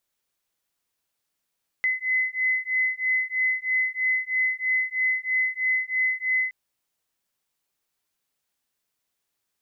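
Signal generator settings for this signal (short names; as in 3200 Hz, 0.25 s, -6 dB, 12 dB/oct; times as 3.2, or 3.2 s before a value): beating tones 2030 Hz, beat 3.1 Hz, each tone -25 dBFS 4.67 s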